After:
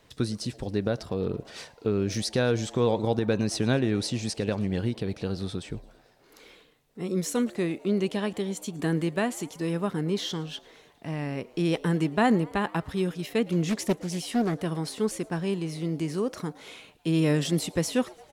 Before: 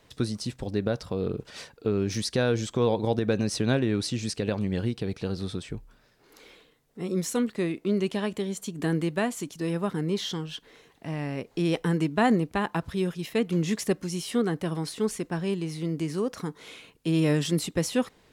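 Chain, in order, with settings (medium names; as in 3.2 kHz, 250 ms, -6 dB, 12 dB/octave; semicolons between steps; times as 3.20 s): frequency-shifting echo 111 ms, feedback 65%, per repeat +110 Hz, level -24 dB; 13.69–14.60 s: loudspeaker Doppler distortion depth 0.44 ms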